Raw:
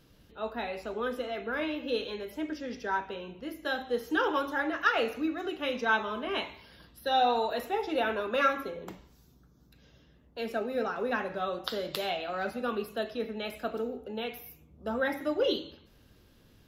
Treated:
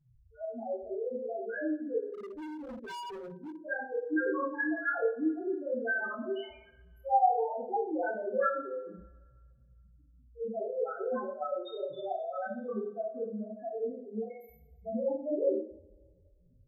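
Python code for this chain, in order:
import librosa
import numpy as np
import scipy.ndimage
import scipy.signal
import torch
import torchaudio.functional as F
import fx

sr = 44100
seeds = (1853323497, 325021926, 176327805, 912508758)

y = fx.spec_topn(x, sr, count=1)
y = fx.rev_double_slope(y, sr, seeds[0], early_s=0.48, late_s=1.9, knee_db=-25, drr_db=-6.0)
y = fx.clip_hard(y, sr, threshold_db=-39.5, at=(2.13, 3.57), fade=0.02)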